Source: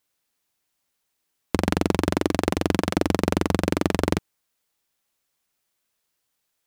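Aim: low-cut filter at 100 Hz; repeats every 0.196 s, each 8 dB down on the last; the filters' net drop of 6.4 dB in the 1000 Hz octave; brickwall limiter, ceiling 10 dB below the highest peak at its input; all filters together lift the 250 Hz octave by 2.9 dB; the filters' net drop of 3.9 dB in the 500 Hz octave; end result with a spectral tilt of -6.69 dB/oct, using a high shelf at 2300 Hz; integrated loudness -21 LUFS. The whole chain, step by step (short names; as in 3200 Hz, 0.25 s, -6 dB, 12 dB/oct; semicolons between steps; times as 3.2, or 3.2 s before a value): HPF 100 Hz; bell 250 Hz +6.5 dB; bell 500 Hz -7 dB; bell 1000 Hz -4.5 dB; high shelf 2300 Hz -9 dB; limiter -15.5 dBFS; feedback echo 0.196 s, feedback 40%, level -8 dB; gain +8.5 dB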